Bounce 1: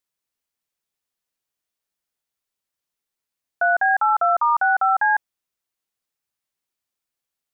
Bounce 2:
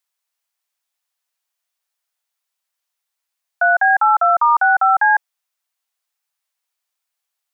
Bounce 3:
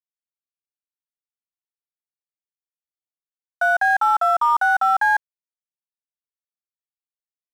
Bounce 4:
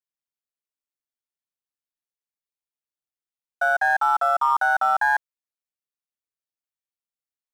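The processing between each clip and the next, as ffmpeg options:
-af "highpass=f=630:w=0.5412,highpass=f=630:w=1.3066,volume=5dB"
-af "aeval=exprs='sgn(val(0))*max(abs(val(0))-0.0188,0)':c=same,volume=-3.5dB"
-af "tremolo=f=140:d=0.571"

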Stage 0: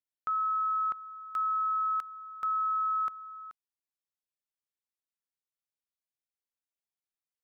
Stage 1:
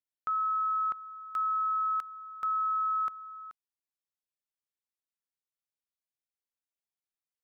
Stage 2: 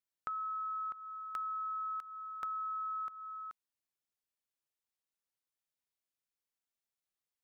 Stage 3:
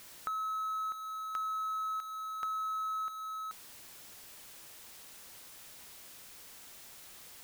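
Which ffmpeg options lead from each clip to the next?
-af anull
-af "acompressor=threshold=-38dB:ratio=6"
-af "aeval=exprs='val(0)+0.5*0.00631*sgn(val(0))':c=same,volume=1dB"

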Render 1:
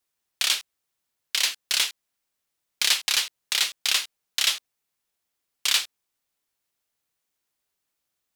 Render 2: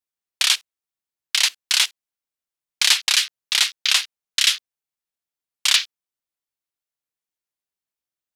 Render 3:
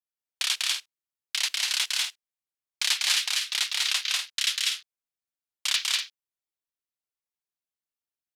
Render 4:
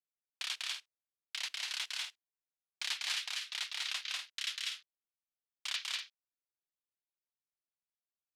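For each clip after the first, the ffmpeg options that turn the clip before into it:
-af "afwtdn=0.02,volume=5.5dB"
-af "aecho=1:1:195.3|244.9:0.891|0.398,volume=-9dB"
-af "highshelf=f=5.8k:g=-10,volume=-9dB"

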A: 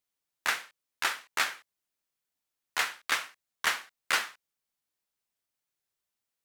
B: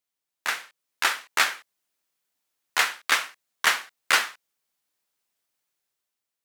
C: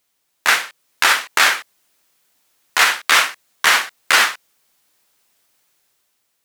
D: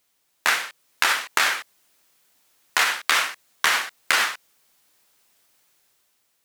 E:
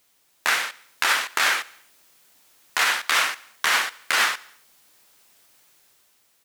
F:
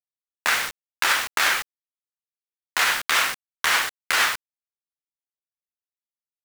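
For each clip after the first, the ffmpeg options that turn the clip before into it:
-af "lowshelf=f=130:g=-9,dynaudnorm=f=140:g=11:m=7dB"
-af "alimiter=level_in=17.5dB:limit=-1dB:release=50:level=0:latency=1,volume=-1dB"
-af "acompressor=threshold=-17dB:ratio=5"
-af "alimiter=limit=-12dB:level=0:latency=1:release=224,aecho=1:1:71|142|213|284:0.0708|0.0425|0.0255|0.0153,volume=5.5dB"
-af "acrusher=bits=4:mix=0:aa=0.000001"

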